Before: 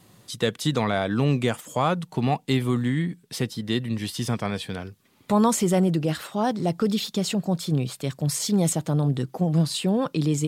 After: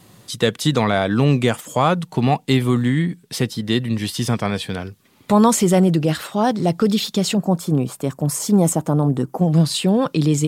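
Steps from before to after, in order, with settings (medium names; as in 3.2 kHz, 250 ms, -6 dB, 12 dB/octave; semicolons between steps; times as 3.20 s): 7.37–9.41 s: ten-band graphic EQ 125 Hz -4 dB, 250 Hz +3 dB, 1 kHz +5 dB, 2 kHz -5 dB, 4 kHz -11 dB; trim +6 dB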